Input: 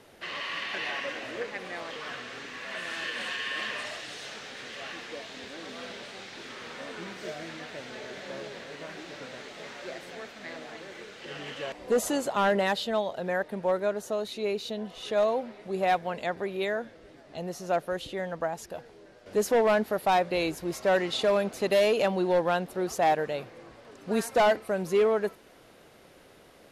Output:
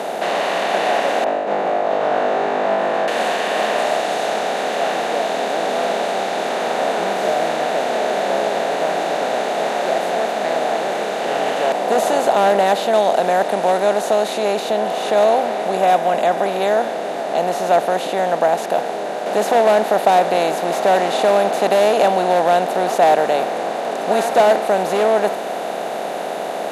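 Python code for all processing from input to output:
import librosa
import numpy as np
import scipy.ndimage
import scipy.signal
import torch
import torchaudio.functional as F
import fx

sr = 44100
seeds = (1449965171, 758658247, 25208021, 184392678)

y = fx.chain(x, sr, fx.lowpass(hz=1000.0, slope=12),
    fx.over_compress(threshold_db=-44.0, ratio=-0.5),
    fx.room_flutter(wall_m=3.4, rt60_s=0.62), at=(1.24, 3.08))
y = fx.chain(y, sr, fx.lowpass(hz=11000.0, slope=24),
    fx.high_shelf(hz=4400.0, db=10.0), at=(12.93, 14.6))
y = fx.chain(y, sr, fx.notch(hz=4300.0, q=5.1),
    fx.notch_comb(f0_hz=450.0), at=(15.77, 16.46))
y = fx.bin_compress(y, sr, power=0.4)
y = scipy.signal.sosfilt(scipy.signal.cheby1(3, 1.0, 160.0, 'highpass', fs=sr, output='sos'), y)
y = fx.peak_eq(y, sr, hz=700.0, db=9.5, octaves=0.64)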